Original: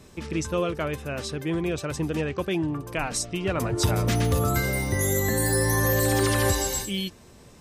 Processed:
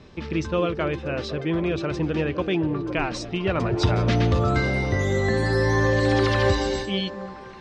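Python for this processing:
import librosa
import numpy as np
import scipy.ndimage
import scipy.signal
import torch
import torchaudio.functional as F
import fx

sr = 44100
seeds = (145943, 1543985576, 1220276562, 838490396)

p1 = scipy.signal.sosfilt(scipy.signal.butter(4, 4700.0, 'lowpass', fs=sr, output='sos'), x)
p2 = p1 + fx.echo_stepped(p1, sr, ms=254, hz=280.0, octaves=0.7, feedback_pct=70, wet_db=-6.5, dry=0)
y = p2 * 10.0 ** (2.5 / 20.0)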